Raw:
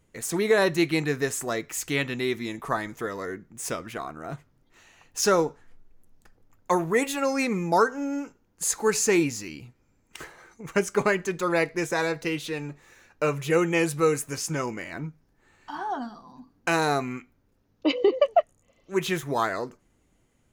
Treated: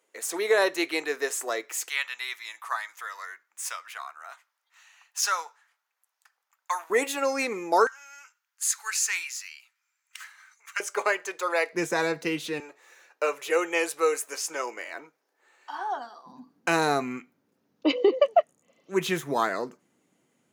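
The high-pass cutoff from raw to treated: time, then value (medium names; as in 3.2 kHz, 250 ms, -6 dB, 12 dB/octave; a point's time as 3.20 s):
high-pass 24 dB/octave
400 Hz
from 1.89 s 960 Hz
from 6.90 s 320 Hz
from 7.87 s 1.3 kHz
from 10.80 s 490 Hz
from 11.73 s 170 Hz
from 12.60 s 430 Hz
from 16.26 s 160 Hz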